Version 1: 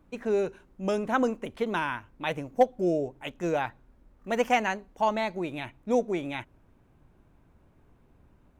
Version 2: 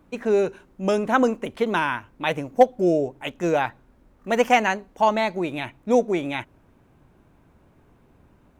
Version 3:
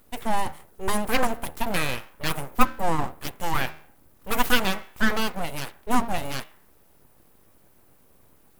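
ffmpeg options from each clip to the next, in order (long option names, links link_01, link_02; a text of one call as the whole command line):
ffmpeg -i in.wav -af "lowshelf=frequency=69:gain=-8.5,volume=6.5dB" out.wav
ffmpeg -i in.wav -af "bandreject=frequency=77.72:width_type=h:width=4,bandreject=frequency=155.44:width_type=h:width=4,bandreject=frequency=233.16:width_type=h:width=4,bandreject=frequency=310.88:width_type=h:width=4,bandreject=frequency=388.6:width_type=h:width=4,bandreject=frequency=466.32:width_type=h:width=4,bandreject=frequency=544.04:width_type=h:width=4,bandreject=frequency=621.76:width_type=h:width=4,bandreject=frequency=699.48:width_type=h:width=4,bandreject=frequency=777.2:width_type=h:width=4,bandreject=frequency=854.92:width_type=h:width=4,bandreject=frequency=932.64:width_type=h:width=4,bandreject=frequency=1010.36:width_type=h:width=4,bandreject=frequency=1088.08:width_type=h:width=4,bandreject=frequency=1165.8:width_type=h:width=4,bandreject=frequency=1243.52:width_type=h:width=4,bandreject=frequency=1321.24:width_type=h:width=4,bandreject=frequency=1398.96:width_type=h:width=4,bandreject=frequency=1476.68:width_type=h:width=4,bandreject=frequency=1554.4:width_type=h:width=4,bandreject=frequency=1632.12:width_type=h:width=4,bandreject=frequency=1709.84:width_type=h:width=4,bandreject=frequency=1787.56:width_type=h:width=4,bandreject=frequency=1865.28:width_type=h:width=4,bandreject=frequency=1943:width_type=h:width=4,aexciter=amount=6.2:drive=8.7:freq=8600,aeval=exprs='abs(val(0))':channel_layout=same" out.wav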